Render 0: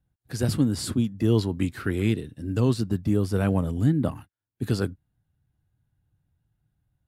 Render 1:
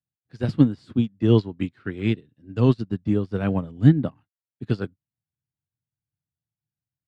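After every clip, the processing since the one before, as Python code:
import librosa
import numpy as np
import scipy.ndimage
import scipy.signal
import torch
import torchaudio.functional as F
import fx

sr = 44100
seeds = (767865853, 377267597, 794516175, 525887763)

y = scipy.signal.sosfilt(scipy.signal.cheby1(2, 1.0, [120.0, 3500.0], 'bandpass', fs=sr, output='sos'), x)
y = fx.upward_expand(y, sr, threshold_db=-35.0, expansion=2.5)
y = F.gain(torch.from_numpy(y), 9.0).numpy()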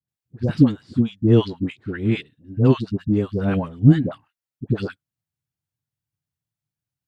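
y = fx.dispersion(x, sr, late='highs', ms=84.0, hz=720.0)
y = F.gain(torch.from_numpy(y), 2.5).numpy()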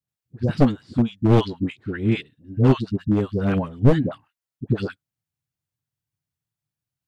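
y = np.minimum(x, 2.0 * 10.0 ** (-13.0 / 20.0) - x)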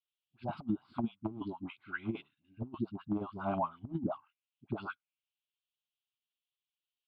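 y = fx.auto_wah(x, sr, base_hz=290.0, top_hz=3100.0, q=3.1, full_db=-13.0, direction='down')
y = fx.over_compress(y, sr, threshold_db=-30.0, ratio=-0.5)
y = fx.fixed_phaser(y, sr, hz=1800.0, stages=6)
y = F.gain(torch.from_numpy(y), 1.0).numpy()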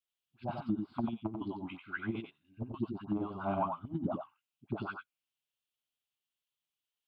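y = x + 10.0 ** (-5.5 / 20.0) * np.pad(x, (int(91 * sr / 1000.0), 0))[:len(x)]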